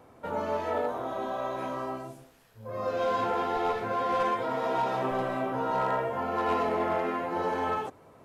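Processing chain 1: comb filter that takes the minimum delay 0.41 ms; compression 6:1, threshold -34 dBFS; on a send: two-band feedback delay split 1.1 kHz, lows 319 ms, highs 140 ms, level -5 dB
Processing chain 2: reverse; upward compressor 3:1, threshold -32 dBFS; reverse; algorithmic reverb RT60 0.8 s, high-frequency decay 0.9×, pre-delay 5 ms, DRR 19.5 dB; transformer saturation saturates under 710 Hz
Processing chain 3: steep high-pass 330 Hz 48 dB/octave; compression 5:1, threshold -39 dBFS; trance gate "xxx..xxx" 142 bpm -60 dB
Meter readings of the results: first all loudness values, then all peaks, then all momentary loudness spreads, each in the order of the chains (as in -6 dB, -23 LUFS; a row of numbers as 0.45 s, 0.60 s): -36.5 LUFS, -32.0 LUFS, -42.5 LUFS; -24.0 dBFS, -20.0 dBFS, -29.0 dBFS; 5 LU, 7 LU, 5 LU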